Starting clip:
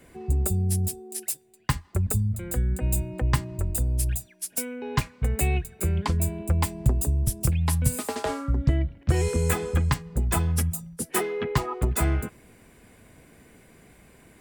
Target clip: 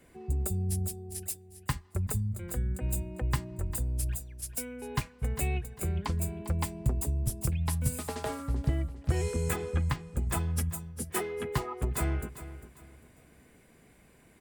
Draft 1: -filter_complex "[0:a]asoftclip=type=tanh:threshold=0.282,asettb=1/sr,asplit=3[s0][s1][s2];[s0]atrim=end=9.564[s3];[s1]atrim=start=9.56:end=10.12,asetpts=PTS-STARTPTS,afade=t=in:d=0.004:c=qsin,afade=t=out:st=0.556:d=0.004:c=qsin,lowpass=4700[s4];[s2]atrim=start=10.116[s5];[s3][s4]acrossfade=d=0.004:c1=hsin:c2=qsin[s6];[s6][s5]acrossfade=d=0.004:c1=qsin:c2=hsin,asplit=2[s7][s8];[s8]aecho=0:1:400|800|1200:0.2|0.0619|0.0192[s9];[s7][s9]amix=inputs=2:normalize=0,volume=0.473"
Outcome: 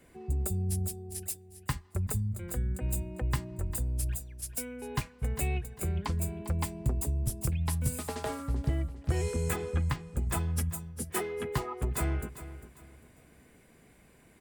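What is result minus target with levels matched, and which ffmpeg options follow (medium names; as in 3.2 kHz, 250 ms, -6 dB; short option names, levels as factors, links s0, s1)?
saturation: distortion +19 dB
-filter_complex "[0:a]asoftclip=type=tanh:threshold=0.944,asettb=1/sr,asplit=3[s0][s1][s2];[s0]atrim=end=9.564[s3];[s1]atrim=start=9.56:end=10.12,asetpts=PTS-STARTPTS,afade=t=in:d=0.004:c=qsin,afade=t=out:st=0.556:d=0.004:c=qsin,lowpass=4700[s4];[s2]atrim=start=10.116[s5];[s3][s4]acrossfade=d=0.004:c1=hsin:c2=qsin[s6];[s6][s5]acrossfade=d=0.004:c1=qsin:c2=hsin,asplit=2[s7][s8];[s8]aecho=0:1:400|800|1200:0.2|0.0619|0.0192[s9];[s7][s9]amix=inputs=2:normalize=0,volume=0.473"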